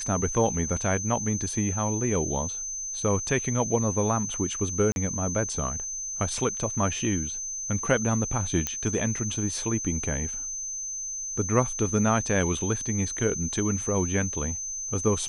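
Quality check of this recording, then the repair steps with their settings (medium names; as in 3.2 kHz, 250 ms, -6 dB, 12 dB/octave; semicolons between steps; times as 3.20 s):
whine 6.2 kHz -31 dBFS
4.92–4.96 s: dropout 41 ms
8.67 s: pop -11 dBFS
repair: de-click; band-stop 6.2 kHz, Q 30; interpolate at 4.92 s, 41 ms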